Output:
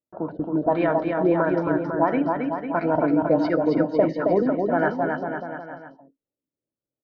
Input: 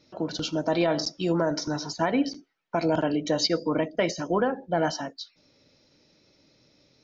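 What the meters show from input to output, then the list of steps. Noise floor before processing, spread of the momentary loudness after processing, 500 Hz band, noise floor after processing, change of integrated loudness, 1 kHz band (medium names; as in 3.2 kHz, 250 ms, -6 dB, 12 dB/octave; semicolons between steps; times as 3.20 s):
-65 dBFS, 10 LU, +5.5 dB, under -85 dBFS, +4.0 dB, +5.5 dB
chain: level-controlled noise filter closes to 920 Hz, open at -19.5 dBFS; gate -56 dBFS, range -33 dB; LFO low-pass sine 1.5 Hz 270–1700 Hz; vibrato 6.3 Hz 13 cents; bouncing-ball echo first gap 270 ms, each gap 0.85×, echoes 5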